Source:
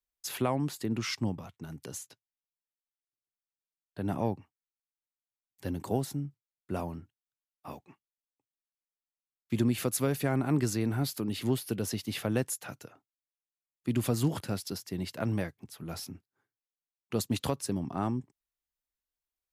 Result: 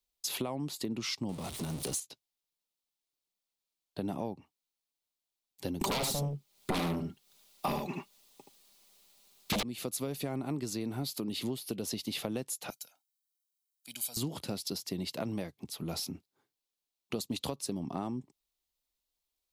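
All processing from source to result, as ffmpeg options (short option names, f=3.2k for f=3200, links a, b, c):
-filter_complex "[0:a]asettb=1/sr,asplit=3[a][b][c];[a]atrim=end=1.294[d];[b]atrim=start=1.29:end=2,asetpts=PTS-STARTPTS,afade=t=in:d=0.004:c=qsin,afade=t=out:st=0.706:d=0.004:c=qsin,aeval=exprs='val(0)+0.5*0.01*sgn(val(0))':c=same,equalizer=f=9.2k:t=o:w=0.35:g=10.5[e];[c]atrim=start=1.996[f];[d][e]acrossfade=d=0.004:c1=hsin:c2=qsin[g];[g][f]acrossfade=d=0.004:c1=qsin:c2=hsin,asettb=1/sr,asplit=3[h][i][j];[h]atrim=end=5.814[k];[i]atrim=start=5.81:end=9.63,asetpts=PTS-STARTPTS,afade=t=in:d=0.004:c=qsin,afade=t=out:st=3.816:d=0.004:c=qsin,aecho=1:1:5:0.53,atrim=end_sample=168462,aeval=exprs='0.188*sin(PI/2*10*val(0)/0.188)':c=same,aecho=1:1:76:0.562,atrim=end_sample=168462[l];[j]atrim=start=9.626[m];[k][l]acrossfade=d=0.004:c1=hsin:c2=qsin[n];[n][m]acrossfade=d=0.004:c1=qsin:c2=hsin,asettb=1/sr,asplit=3[o][p][q];[o]atrim=end=12.704[r];[p]atrim=start=12.7:end=14.17,asetpts=PTS-STARTPTS,afade=t=in:d=0.004:c=qsin,afade=t=out:st=1.466:d=0.004:c=qsin,aderivative,aecho=1:1:1.3:0.77,atrim=end_sample=64827[s];[q]atrim=start=14.166[t];[r][s]acrossfade=d=0.004:c1=hsin:c2=qsin[u];[u][t]acrossfade=d=0.004:c1=qsin:c2=hsin,equalizer=f=100:t=o:w=0.67:g=-9,equalizer=f=1.6k:t=o:w=0.67:g=-9,equalizer=f=4k:t=o:w=0.67:g=5,acompressor=threshold=-38dB:ratio=6,volume=5.5dB"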